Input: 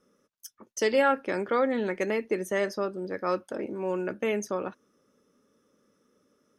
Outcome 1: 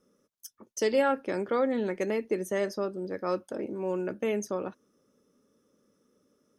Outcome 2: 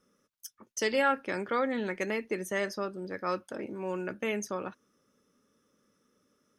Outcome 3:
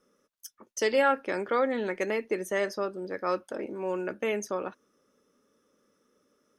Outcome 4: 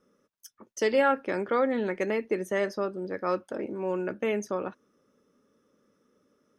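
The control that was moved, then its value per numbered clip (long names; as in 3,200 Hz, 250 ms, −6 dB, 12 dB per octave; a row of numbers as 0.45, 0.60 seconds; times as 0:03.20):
parametric band, centre frequency: 1,800, 460, 130, 13,000 Hertz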